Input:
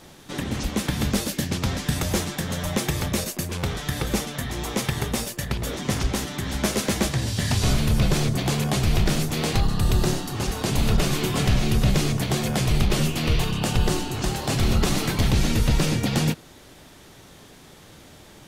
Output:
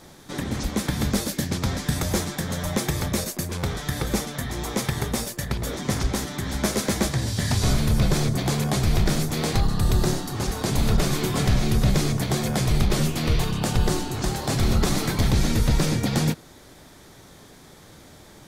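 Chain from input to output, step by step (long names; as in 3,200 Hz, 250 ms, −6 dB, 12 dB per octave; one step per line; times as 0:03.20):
parametric band 2,800 Hz −7 dB 0.34 octaves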